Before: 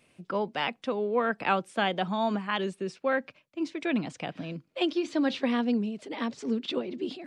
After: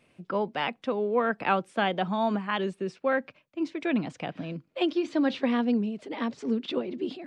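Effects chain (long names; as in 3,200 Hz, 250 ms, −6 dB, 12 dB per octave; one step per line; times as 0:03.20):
high-shelf EQ 4,300 Hz −9 dB
level +1.5 dB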